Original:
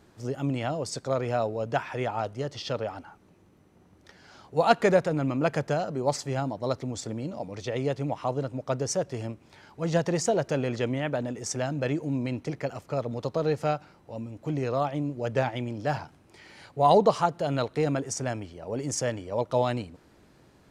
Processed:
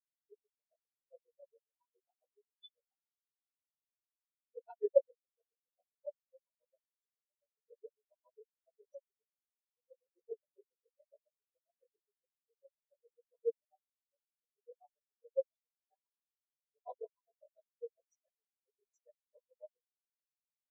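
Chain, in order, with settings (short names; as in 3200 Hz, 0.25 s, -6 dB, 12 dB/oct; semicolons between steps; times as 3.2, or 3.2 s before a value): phase scrambler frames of 0.1 s; elliptic high-pass 410 Hz; bell 1000 Hz -15 dB 1.5 oct; reverse; upward compressor, threshold -38 dBFS; reverse; grains 0.1 s, grains 7.3/s, spray 11 ms, pitch spread up and down by 0 st; small resonant body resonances 980/3500 Hz, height 14 dB, ringing for 55 ms; spectral expander 4:1; gain +5 dB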